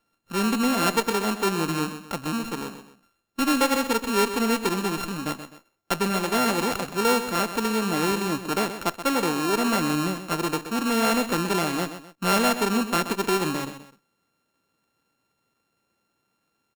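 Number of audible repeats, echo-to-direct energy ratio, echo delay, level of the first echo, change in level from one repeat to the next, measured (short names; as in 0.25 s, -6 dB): 2, -10.5 dB, 0.128 s, -11.0 dB, -8.5 dB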